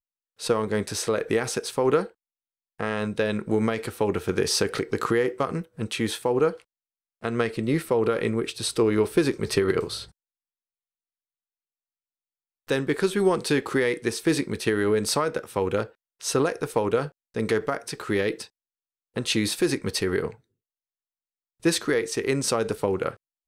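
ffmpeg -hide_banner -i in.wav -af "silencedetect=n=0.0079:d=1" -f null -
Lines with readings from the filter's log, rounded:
silence_start: 10.07
silence_end: 12.68 | silence_duration: 2.62
silence_start: 20.35
silence_end: 21.63 | silence_duration: 1.28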